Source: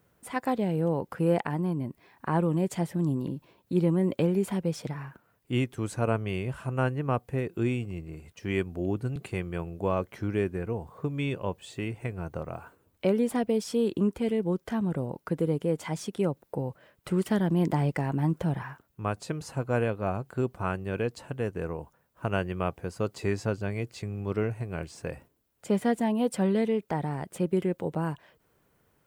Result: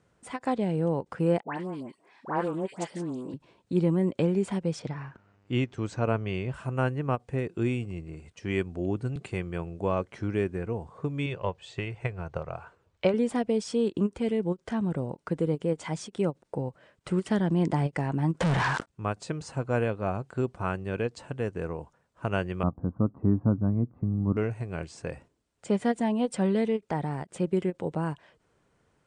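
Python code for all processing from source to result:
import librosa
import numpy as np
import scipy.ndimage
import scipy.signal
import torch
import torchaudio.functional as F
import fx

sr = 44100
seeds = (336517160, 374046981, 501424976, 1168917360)

y = fx.chain(x, sr, fx.highpass(hz=300.0, slope=12),
    fx.dispersion(late='highs', ms=107.0, hz=1700.0),
    fx.doppler_dist(depth_ms=0.14), at=(1.43, 3.34))
y = fx.lowpass(y, sr, hz=6700.0, slope=24, at=(4.79, 6.52), fade=0.02)
y = fx.dmg_buzz(y, sr, base_hz=100.0, harmonics=30, level_db=-65.0, tilt_db=-6, odd_only=False, at=(4.79, 6.52), fade=0.02)
y = fx.chain(y, sr, fx.lowpass(hz=5700.0, slope=12),
    fx.peak_eq(hz=260.0, db=-12.0, octaves=0.76),
    fx.transient(attack_db=6, sustain_db=1), at=(11.26, 13.14))
y = fx.chain(y, sr, fx.low_shelf(hz=250.0, db=-7.0),
    fx.leveller(passes=5),
    fx.sustainer(db_per_s=32.0), at=(18.4, 18.86))
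y = fx.chain(y, sr, fx.cheby1_lowpass(hz=1200.0, order=4),
    fx.low_shelf_res(hz=330.0, db=6.5, q=3.0), at=(22.63, 24.37))
y = scipy.signal.sosfilt(scipy.signal.butter(8, 9100.0, 'lowpass', fs=sr, output='sos'), y)
y = fx.end_taper(y, sr, db_per_s=590.0)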